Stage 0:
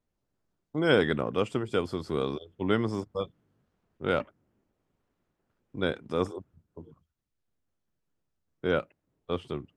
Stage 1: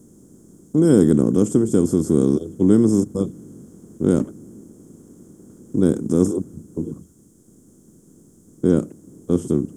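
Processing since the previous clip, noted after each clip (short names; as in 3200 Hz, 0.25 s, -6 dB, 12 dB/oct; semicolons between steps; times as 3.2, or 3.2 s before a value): per-bin compression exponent 0.6; EQ curve 120 Hz 0 dB, 190 Hz +7 dB, 330 Hz +5 dB, 580 Hz -12 dB, 1000 Hz -13 dB, 2400 Hz -27 dB, 4600 Hz -14 dB, 6500 Hz +12 dB; gain +7.5 dB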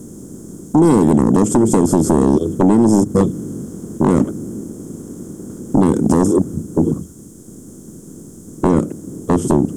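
compressor 6:1, threshold -18 dBFS, peak gain reduction 9.5 dB; sine folder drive 7 dB, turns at -9 dBFS; gain +3 dB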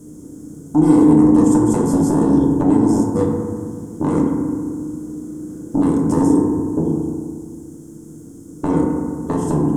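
FDN reverb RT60 1.9 s, low-frequency decay 1.25×, high-frequency decay 0.3×, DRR -2 dB; gain -8.5 dB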